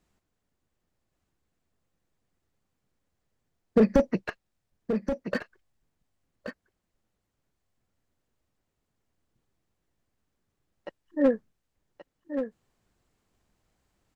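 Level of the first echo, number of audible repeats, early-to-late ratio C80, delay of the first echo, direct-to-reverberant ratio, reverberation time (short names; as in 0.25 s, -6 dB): -8.5 dB, 1, none, 1.128 s, none, none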